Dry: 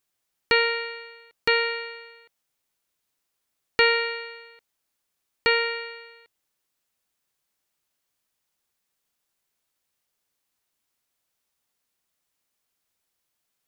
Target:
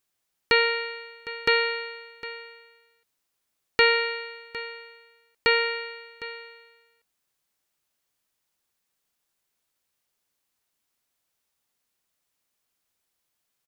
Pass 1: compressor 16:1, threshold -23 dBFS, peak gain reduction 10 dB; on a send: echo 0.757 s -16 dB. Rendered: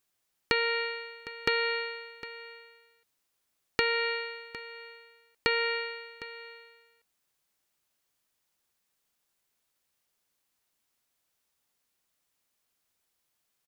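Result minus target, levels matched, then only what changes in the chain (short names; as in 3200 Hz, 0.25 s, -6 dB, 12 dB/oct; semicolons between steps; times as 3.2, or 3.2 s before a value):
compressor: peak gain reduction +10 dB
remove: compressor 16:1, threshold -23 dBFS, peak gain reduction 10 dB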